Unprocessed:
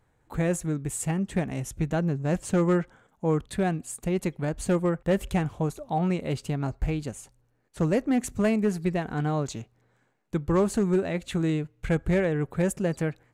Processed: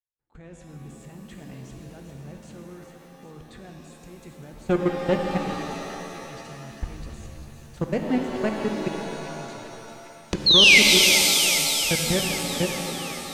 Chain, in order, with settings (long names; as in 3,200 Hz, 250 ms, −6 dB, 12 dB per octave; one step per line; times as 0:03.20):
fade in at the beginning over 4.38 s
camcorder AGC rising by 37 dB per second
high-shelf EQ 3,700 Hz +8 dB
output level in coarse steps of 22 dB
0:04.69–0:05.14: leveller curve on the samples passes 2
0:10.46–0:10.79: sound drawn into the spectrogram fall 2,000–4,400 Hz −12 dBFS
high-frequency loss of the air 120 metres
on a send: delay with a high-pass on its return 398 ms, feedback 67%, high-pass 1,900 Hz, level −8.5 dB
on the sum: reverb with rising layers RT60 2.4 s, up +7 semitones, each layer −2 dB, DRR 3.5 dB